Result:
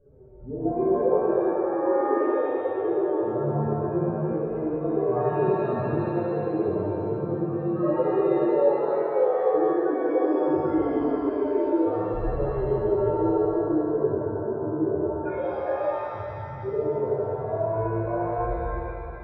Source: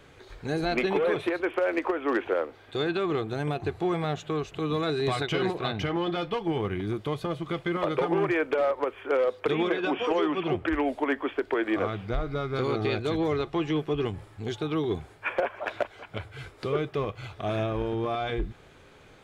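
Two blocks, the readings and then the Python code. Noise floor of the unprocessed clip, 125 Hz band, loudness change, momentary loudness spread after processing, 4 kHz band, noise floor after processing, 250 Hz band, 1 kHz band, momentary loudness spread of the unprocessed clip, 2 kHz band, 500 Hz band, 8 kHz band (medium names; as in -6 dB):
-53 dBFS, +2.0 dB, +3.5 dB, 6 LU, under -20 dB, -34 dBFS, +3.5 dB, +2.5 dB, 7 LU, -9.0 dB, +5.0 dB, no reading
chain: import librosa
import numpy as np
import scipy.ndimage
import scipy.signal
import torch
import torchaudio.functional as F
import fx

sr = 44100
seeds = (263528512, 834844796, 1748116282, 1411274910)

p1 = fx.spec_expand(x, sr, power=3.9)
p2 = scipy.signal.sosfilt(scipy.signal.butter(4, 1200.0, 'lowpass', fs=sr, output='sos'), p1)
p3 = p2 + fx.echo_bbd(p2, sr, ms=218, stages=1024, feedback_pct=65, wet_db=-10.0, dry=0)
p4 = fx.rev_shimmer(p3, sr, seeds[0], rt60_s=2.2, semitones=7, shimmer_db=-8, drr_db=-10.0)
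y = p4 * librosa.db_to_amplitude(-6.5)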